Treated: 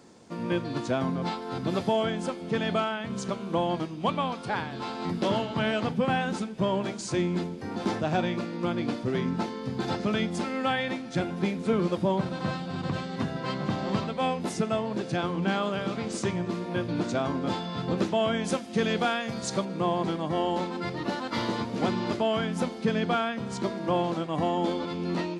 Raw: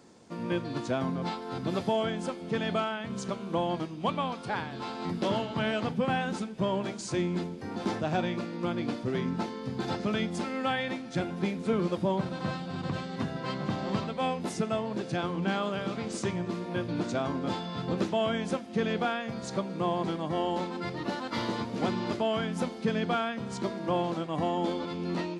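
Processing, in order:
0:18.44–0:19.65: high-shelf EQ 3,900 Hz +9 dB
level +2.5 dB

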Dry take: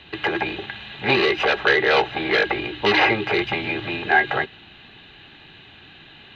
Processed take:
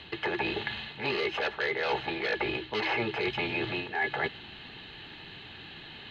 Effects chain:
wrong playback speed 24 fps film run at 25 fps
reversed playback
downward compressor 6 to 1, threshold −28 dBFS, peak gain reduction 15 dB
reversed playback

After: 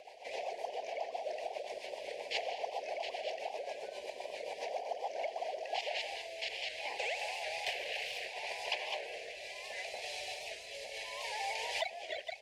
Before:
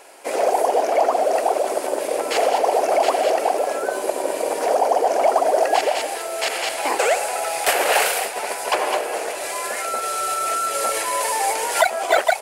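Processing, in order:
high-pass filter 42 Hz
high-frequency loss of the air 240 metres
downward compressor 2 to 1, threshold −24 dBFS, peak gain reduction 7.5 dB
Butterworth band-reject 1,300 Hz, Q 0.97
guitar amp tone stack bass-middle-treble 10-0-10
backwards echo 472 ms −14 dB
rotating-speaker cabinet horn 7.5 Hz, later 0.7 Hz, at 0:04.89
wow of a warped record 78 rpm, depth 100 cents
level +2.5 dB

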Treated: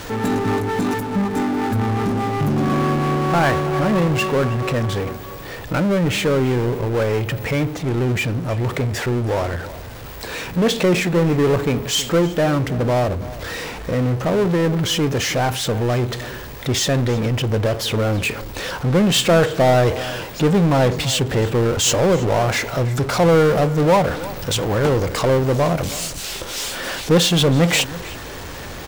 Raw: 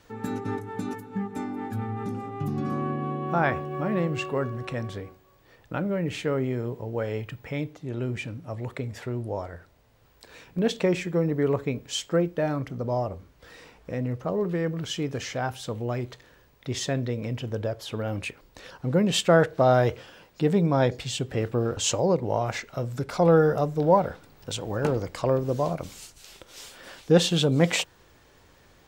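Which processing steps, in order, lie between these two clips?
power curve on the samples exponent 0.5
slap from a distant wall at 55 metres, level −16 dB

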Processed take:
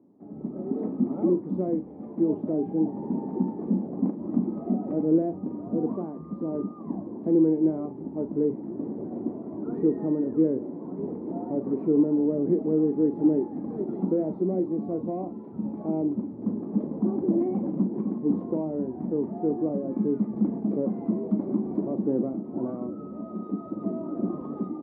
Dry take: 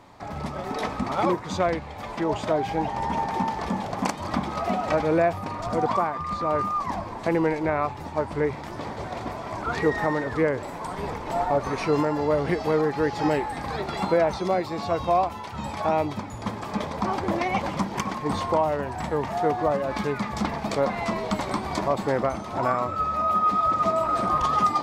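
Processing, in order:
automatic gain control gain up to 8 dB
soft clipping −9.5 dBFS, distortion −17 dB
flat-topped band-pass 270 Hz, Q 1.5
double-tracking delay 38 ms −11 dB

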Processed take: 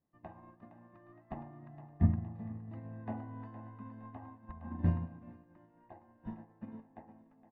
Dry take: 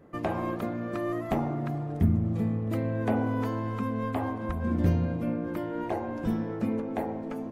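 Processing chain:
low-pass filter 2,000 Hz 12 dB per octave
comb filter 1.1 ms, depth 57%
feedback echo with a high-pass in the loop 465 ms, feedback 49%, high-pass 350 Hz, level −6 dB
expander for the loud parts 2.5 to 1, over −34 dBFS
level −4 dB

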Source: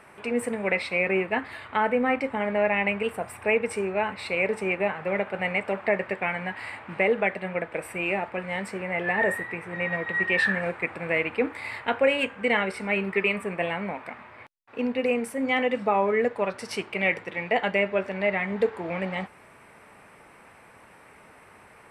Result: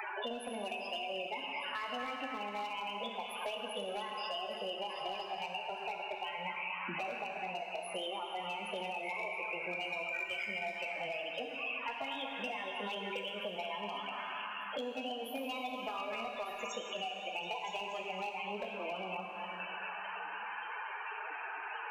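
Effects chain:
high-pass filter 280 Hz 12 dB per octave
downward compressor 10 to 1, threshold −37 dBFS, peak gain reduction 20 dB
formants moved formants +4 semitones
spectral peaks only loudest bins 16
on a send: echo through a band-pass that steps 240 ms, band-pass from 1,300 Hz, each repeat 0.7 octaves, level −2 dB
on the sum: gain into a clipping stage and back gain 33.5 dB
dense smooth reverb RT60 1.9 s, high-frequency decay 0.95×, DRR 2.5 dB
multiband upward and downward compressor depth 100%

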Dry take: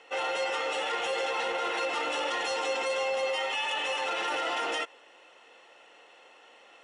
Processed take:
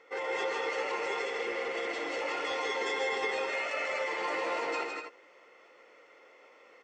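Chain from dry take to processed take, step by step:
formants moved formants −4 semitones
loudspeakers that aren't time-aligned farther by 41 metres −12 dB, 55 metres −4 dB, 83 metres −8 dB
healed spectral selection 0:01.31–0:02.19, 770–2,500 Hz before
level −4 dB

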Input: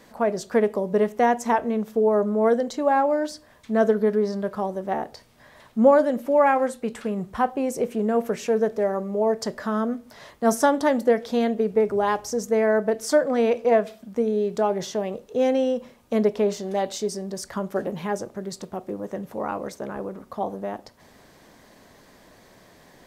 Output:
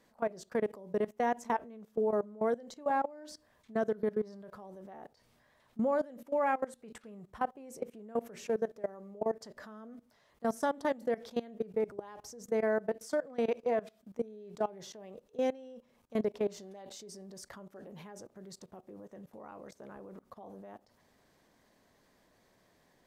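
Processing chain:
output level in coarse steps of 20 dB
level −8.5 dB

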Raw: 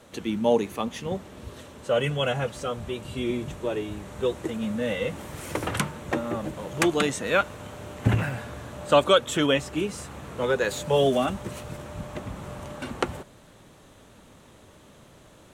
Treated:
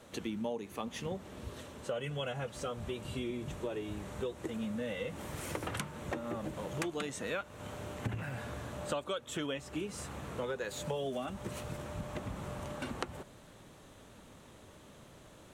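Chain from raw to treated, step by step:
downward compressor 6 to 1, threshold −31 dBFS, peak gain reduction 16.5 dB
level −3.5 dB

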